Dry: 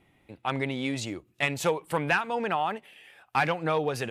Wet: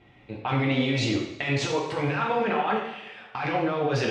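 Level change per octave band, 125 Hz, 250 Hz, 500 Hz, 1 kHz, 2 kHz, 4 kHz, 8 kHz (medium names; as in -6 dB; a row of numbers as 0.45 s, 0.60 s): +7.0 dB, +6.0 dB, +2.5 dB, +1.0 dB, -0.5 dB, +4.5 dB, 0.0 dB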